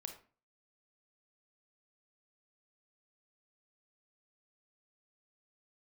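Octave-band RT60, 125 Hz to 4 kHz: 0.50, 0.45, 0.40, 0.40, 0.35, 0.30 s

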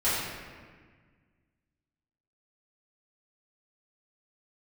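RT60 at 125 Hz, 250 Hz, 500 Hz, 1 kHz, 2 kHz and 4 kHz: 2.3, 2.1, 1.6, 1.5, 1.6, 1.1 s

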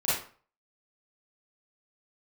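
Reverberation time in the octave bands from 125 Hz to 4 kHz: 0.45, 0.40, 0.40, 0.45, 0.40, 0.30 s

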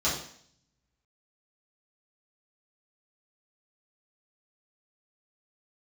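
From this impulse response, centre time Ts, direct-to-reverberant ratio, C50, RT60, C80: 39 ms, -10.0 dB, 4.5 dB, 0.60 s, 8.5 dB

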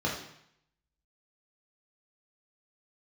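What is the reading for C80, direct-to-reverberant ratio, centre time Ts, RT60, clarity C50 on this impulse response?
8.0 dB, -4.0 dB, 36 ms, 0.70 s, 4.5 dB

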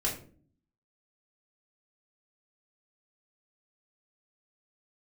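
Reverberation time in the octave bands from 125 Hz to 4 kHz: 0.80, 0.80, 0.55, 0.35, 0.35, 0.30 s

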